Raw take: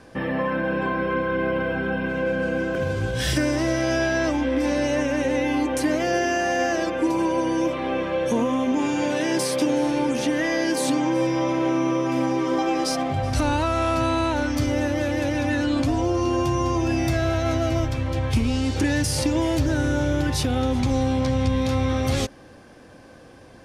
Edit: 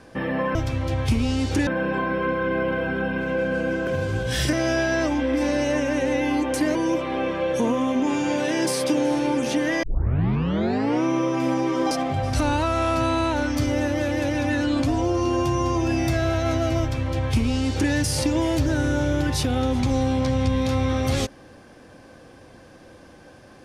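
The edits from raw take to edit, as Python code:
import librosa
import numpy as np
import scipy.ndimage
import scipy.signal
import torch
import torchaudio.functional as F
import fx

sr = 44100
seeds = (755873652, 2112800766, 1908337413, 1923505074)

y = fx.edit(x, sr, fx.cut(start_s=3.41, length_s=0.35),
    fx.cut(start_s=5.98, length_s=1.49),
    fx.tape_start(start_s=10.55, length_s=1.21),
    fx.cut(start_s=12.63, length_s=0.28),
    fx.duplicate(start_s=17.8, length_s=1.12, to_s=0.55), tone=tone)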